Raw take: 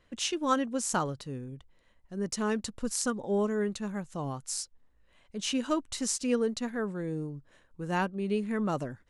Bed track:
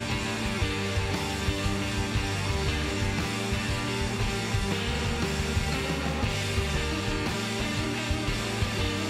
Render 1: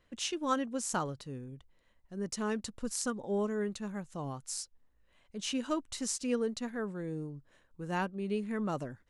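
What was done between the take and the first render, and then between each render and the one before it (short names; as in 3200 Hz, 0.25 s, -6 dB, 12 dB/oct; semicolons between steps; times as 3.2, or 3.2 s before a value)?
gain -4 dB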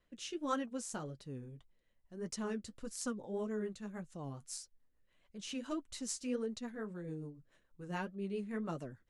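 rotary speaker horn 1.2 Hz, later 7 Hz, at 2.44; flange 1.7 Hz, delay 4.3 ms, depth 6.2 ms, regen -45%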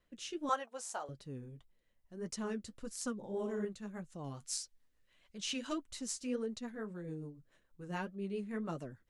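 0.49–1.09 resonant high-pass 720 Hz, resonance Q 2.3; 3.16–3.65 flutter echo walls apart 10.7 m, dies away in 0.63 s; 4.24–5.78 bell 4100 Hz +7.5 dB 3 oct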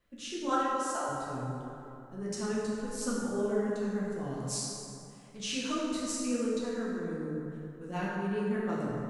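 plate-style reverb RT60 3 s, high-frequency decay 0.45×, DRR -6.5 dB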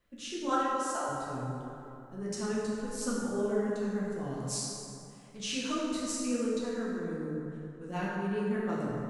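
7.36–7.88 brick-wall FIR low-pass 10000 Hz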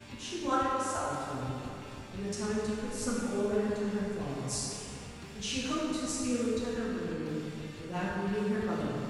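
add bed track -18.5 dB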